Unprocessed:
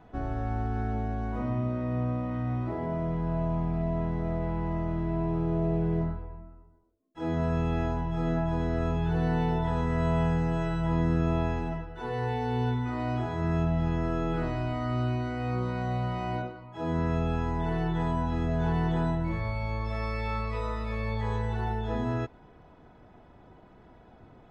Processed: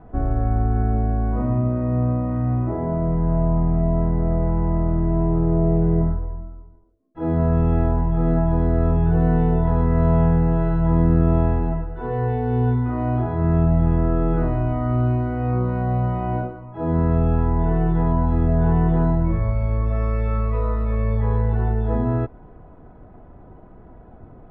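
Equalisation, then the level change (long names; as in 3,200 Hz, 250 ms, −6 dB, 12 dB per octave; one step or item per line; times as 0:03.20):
low-pass filter 1,200 Hz 12 dB per octave
low-shelf EQ 63 Hz +9.5 dB
notch filter 890 Hz, Q 12
+7.5 dB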